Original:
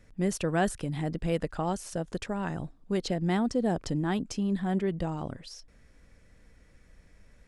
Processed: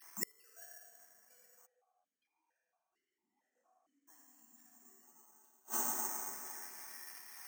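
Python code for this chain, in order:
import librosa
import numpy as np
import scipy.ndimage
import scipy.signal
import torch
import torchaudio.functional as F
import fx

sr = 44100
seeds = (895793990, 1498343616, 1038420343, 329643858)

y = fx.sine_speech(x, sr)
y = fx.chorus_voices(y, sr, voices=6, hz=1.3, base_ms=19, depth_ms=3.0, mix_pct=20)
y = 10.0 ** (-18.5 / 20.0) * np.tanh(y / 10.0 ** (-18.5 / 20.0))
y = fx.notch(y, sr, hz=550.0, q=12.0)
y = fx.level_steps(y, sr, step_db=15)
y = fx.low_shelf_res(y, sr, hz=640.0, db=-12.5, q=1.5)
y = fx.rev_plate(y, sr, seeds[0], rt60_s=2.9, hf_ratio=0.6, predelay_ms=0, drr_db=-6.0)
y = (np.kron(y[::6], np.eye(6)[0]) * 6)[:len(y)]
y = fx.gate_flip(y, sr, shuts_db=-23.0, range_db=-41)
y = fx.vowel_held(y, sr, hz=4.4, at=(1.65, 4.07), fade=0.02)
y = y * 10.0 ** (8.5 / 20.0)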